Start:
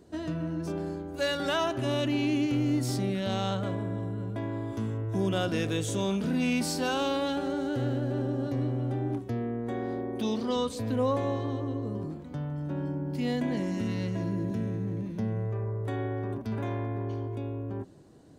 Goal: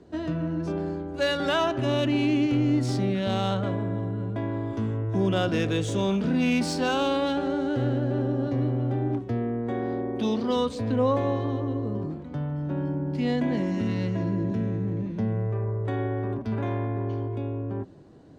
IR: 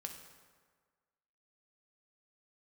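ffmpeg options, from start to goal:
-filter_complex "[0:a]acrossover=split=150|890[link_01][link_02][link_03];[link_03]adynamicsmooth=sensitivity=4.5:basefreq=4900[link_04];[link_01][link_02][link_04]amix=inputs=3:normalize=0,volume=4dB"

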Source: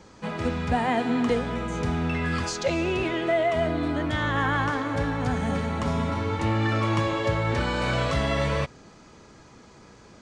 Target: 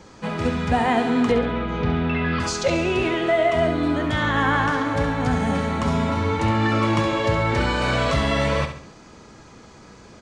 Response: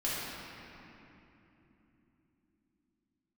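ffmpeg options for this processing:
-filter_complex "[0:a]asettb=1/sr,asplit=3[link_01][link_02][link_03];[link_01]atrim=end=1.314[link_04];[link_02]atrim=start=1.31:end=2.4,asetpts=PTS-STARTPTS,afade=type=in:duration=0.004:curve=qsin,afade=type=out:start_time=1.086:duration=0.004:curve=qsin,lowpass=frequency=3900:width=0.5412,lowpass=frequency=3900:width=1.3066[link_05];[link_03]atrim=start=2.396[link_06];[link_04][link_05]acrossfade=duration=0.004:curve1=hsin:curve2=qsin[link_07];[link_07][link_06]acrossfade=duration=0.004:curve1=qsin:curve2=hsin,aecho=1:1:68|136|204|272:0.355|0.142|0.0568|0.0227,volume=4dB"

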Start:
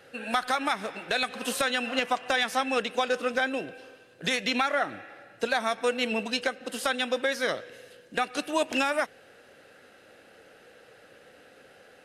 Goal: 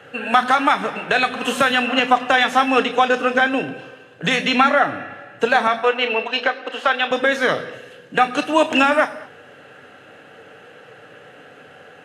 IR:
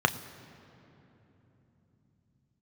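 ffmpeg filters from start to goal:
-filter_complex "[0:a]asettb=1/sr,asplit=3[link_01][link_02][link_03];[link_01]atrim=end=5.674[link_04];[link_02]atrim=start=5.67:end=7.11,asetpts=PTS-STARTPTS,afade=type=in:duration=0.004:curve=qsin,afade=type=out:start_time=1.436:duration=0.004:curve=qsin,acrossover=split=330 4800:gain=0.0631 1 0.1[link_05][link_06][link_07];[link_05][link_06][link_07]amix=inputs=3:normalize=0[link_08];[link_03]atrim=start=7.106[link_09];[link_04][link_08]acrossfade=duration=0.004:curve1=hsin:curve2=qsin[link_10];[link_10][link_09]acrossfade=duration=0.004:curve1=qsin:curve2=hsin[link_11];[1:a]atrim=start_sample=2205,afade=type=out:start_time=0.29:duration=0.01,atrim=end_sample=13230[link_12];[link_11][link_12]afir=irnorm=-1:irlink=0,volume=-2.5dB"

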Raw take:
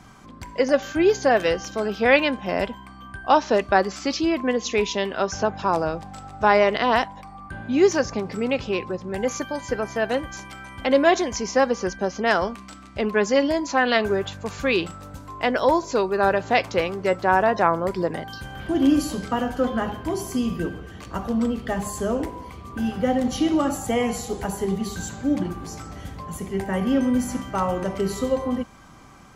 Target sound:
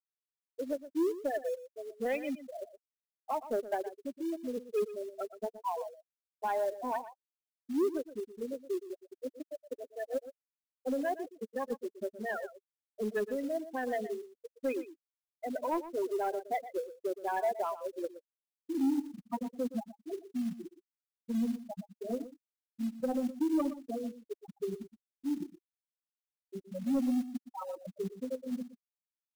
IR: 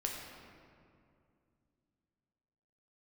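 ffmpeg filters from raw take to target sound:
-af "highpass=frequency=170:width=0.5412,highpass=frequency=170:width=1.3066,afftfilt=real='re*gte(hypot(re,im),0.447)':imag='im*gte(hypot(re,im),0.447)':win_size=1024:overlap=0.75,alimiter=limit=-13.5dB:level=0:latency=1:release=142,flanger=delay=2.5:depth=2.6:regen=28:speed=0.12:shape=triangular,acrusher=bits=5:mode=log:mix=0:aa=0.000001,asoftclip=type=tanh:threshold=-17dB,aecho=1:1:119:0.2,volume=-6dB"

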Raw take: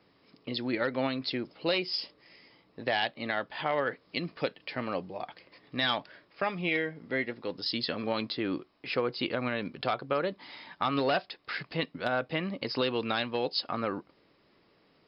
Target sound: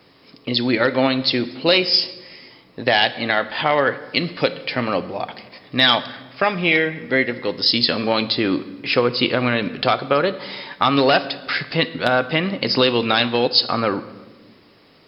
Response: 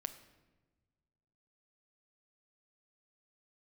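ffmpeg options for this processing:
-filter_complex "[0:a]asplit=2[link_01][link_02];[1:a]atrim=start_sample=2205,asetrate=37485,aresample=44100,highshelf=frequency=3800:gain=10.5[link_03];[link_02][link_03]afir=irnorm=-1:irlink=0,volume=5.5dB[link_04];[link_01][link_04]amix=inputs=2:normalize=0,volume=3.5dB"

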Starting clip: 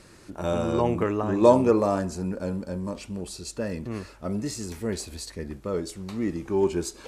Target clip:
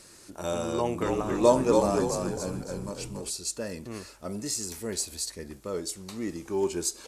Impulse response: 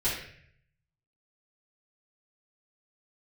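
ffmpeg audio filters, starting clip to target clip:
-filter_complex "[0:a]bass=frequency=250:gain=-5,treble=frequency=4000:gain=11,asplit=3[link_01][link_02][link_03];[link_01]afade=type=out:start_time=1.01:duration=0.02[link_04];[link_02]asplit=6[link_05][link_06][link_07][link_08][link_09][link_10];[link_06]adelay=280,afreqshift=-59,volume=-4dB[link_11];[link_07]adelay=560,afreqshift=-118,volume=-12.6dB[link_12];[link_08]adelay=840,afreqshift=-177,volume=-21.3dB[link_13];[link_09]adelay=1120,afreqshift=-236,volume=-29.9dB[link_14];[link_10]adelay=1400,afreqshift=-295,volume=-38.5dB[link_15];[link_05][link_11][link_12][link_13][link_14][link_15]amix=inputs=6:normalize=0,afade=type=in:start_time=1.01:duration=0.02,afade=type=out:start_time=3.29:duration=0.02[link_16];[link_03]afade=type=in:start_time=3.29:duration=0.02[link_17];[link_04][link_16][link_17]amix=inputs=3:normalize=0,volume=-3.5dB"

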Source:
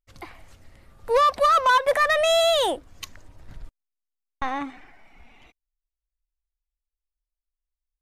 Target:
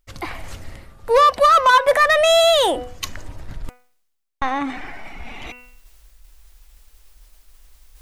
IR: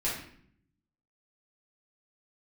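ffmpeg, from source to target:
-af "bandreject=frequency=247.4:width_type=h:width=4,bandreject=frequency=494.8:width_type=h:width=4,bandreject=frequency=742.2:width_type=h:width=4,bandreject=frequency=989.6:width_type=h:width=4,bandreject=frequency=1237:width_type=h:width=4,bandreject=frequency=1484.4:width_type=h:width=4,bandreject=frequency=1731.8:width_type=h:width=4,bandreject=frequency=1979.2:width_type=h:width=4,bandreject=frequency=2226.6:width_type=h:width=4,bandreject=frequency=2474:width_type=h:width=4,bandreject=frequency=2721.4:width_type=h:width=4,bandreject=frequency=2968.8:width_type=h:width=4,areverse,acompressor=mode=upward:threshold=-26dB:ratio=2.5,areverse,volume=5.5dB"

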